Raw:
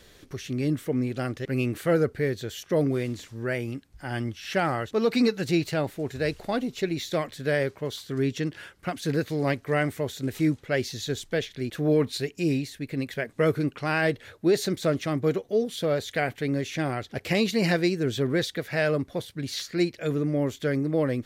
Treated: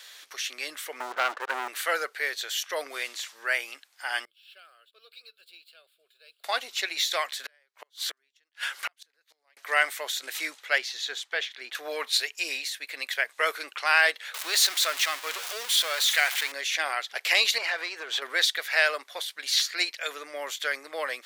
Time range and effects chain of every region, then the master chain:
1.00–1.68 s: Chebyshev low-pass 1.6 kHz, order 6 + waveshaping leveller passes 3
4.25–6.44 s: median filter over 3 samples + amplifier tone stack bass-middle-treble 10-0-1 + static phaser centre 1.3 kHz, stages 8
7.44–9.57 s: upward compressor, threshold -27 dBFS + inverted gate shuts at -23 dBFS, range -41 dB
10.78–11.75 s: low-pass 2.2 kHz 6 dB/octave + band-stop 580 Hz, Q 6.4
14.34–16.52 s: jump at every zero crossing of -31 dBFS + peaking EQ 440 Hz -7 dB 2.3 oct
17.58–18.22 s: compression 12:1, threshold -27 dBFS + overdrive pedal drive 16 dB, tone 1.1 kHz, clips at -17 dBFS + overload inside the chain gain 23 dB
whole clip: Bessel high-pass 1.2 kHz, order 4; peaking EQ 3.6 kHz +2 dB; trim +8.5 dB

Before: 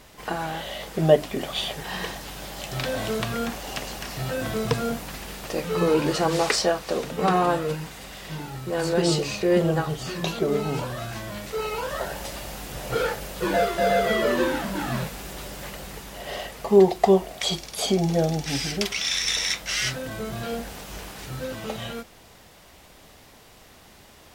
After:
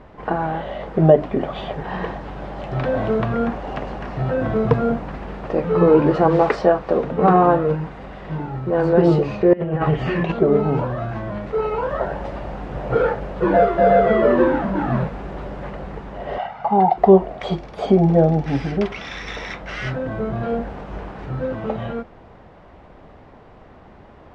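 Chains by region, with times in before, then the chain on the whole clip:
9.53–10.32 s: high-order bell 2.3 kHz +9 dB 1 oct + compressor with a negative ratio -26 dBFS, ratio -0.5
16.38–16.98 s: band-pass 110–4900 Hz + resonant low shelf 660 Hz -6.5 dB, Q 3 + comb 1.4 ms, depth 64%
whole clip: low-pass 1.2 kHz 12 dB/octave; loudness maximiser +9 dB; trim -1 dB

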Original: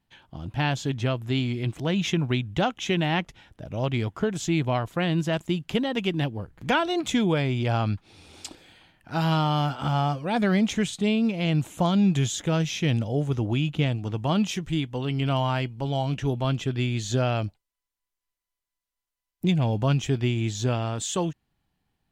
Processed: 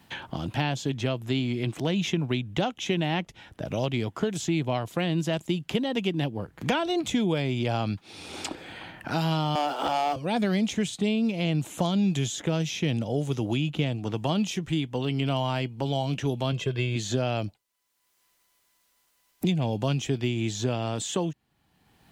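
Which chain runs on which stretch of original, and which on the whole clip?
9.55–10.16 s: high-pass 380 Hz 24 dB/octave + tilt EQ -2.5 dB/octave + waveshaping leveller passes 2
16.52–16.96 s: tone controls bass 0 dB, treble -5 dB + comb 1.9 ms, depth 66%
whole clip: high-pass 160 Hz 6 dB/octave; dynamic bell 1.4 kHz, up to -6 dB, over -42 dBFS, Q 1; three bands compressed up and down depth 70%

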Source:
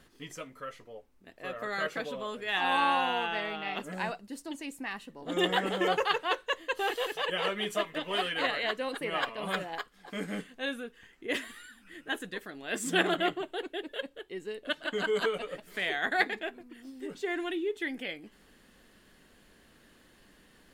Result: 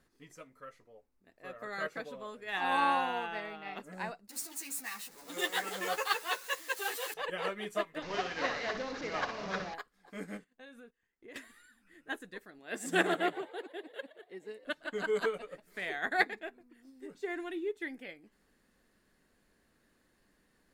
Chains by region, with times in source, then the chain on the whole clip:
4.29–7.14 s: jump at every zero crossing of -36.5 dBFS + tilt EQ +3.5 dB/octave + three-phase chorus
8.02–9.74 s: one-bit delta coder 32 kbps, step -29.5 dBFS + distance through air 59 m + flutter echo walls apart 10.6 m, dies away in 0.48 s
10.37–11.36 s: peaking EQ 11 kHz -7 dB 0.3 oct + compression 4:1, threshold -39 dBFS + gate -51 dBFS, range -15 dB
12.59–14.65 s: high-pass 130 Hz + frequency-shifting echo 117 ms, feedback 48%, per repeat +84 Hz, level -13 dB
whole clip: peaking EQ 3.1 kHz -8 dB 0.39 oct; upward expansion 1.5:1, over -44 dBFS

